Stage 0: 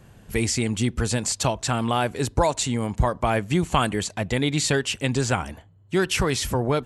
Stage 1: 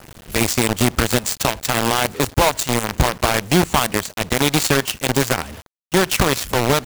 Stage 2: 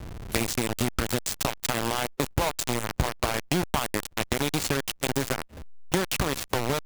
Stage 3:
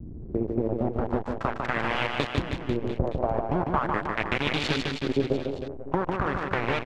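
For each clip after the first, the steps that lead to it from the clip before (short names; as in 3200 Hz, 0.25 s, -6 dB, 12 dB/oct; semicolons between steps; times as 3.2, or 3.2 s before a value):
in parallel at +1.5 dB: limiter -15.5 dBFS, peak gain reduction 8 dB; on the sum: companded quantiser 2-bit; gain -7.5 dB
compressor 4:1, threshold -24 dBFS, peak gain reduction 12 dB; backlash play -31 dBFS; gain +1.5 dB
LFO low-pass saw up 0.42 Hz 250–4000 Hz; reverse bouncing-ball echo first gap 0.15 s, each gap 1.1×, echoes 5; gain -2.5 dB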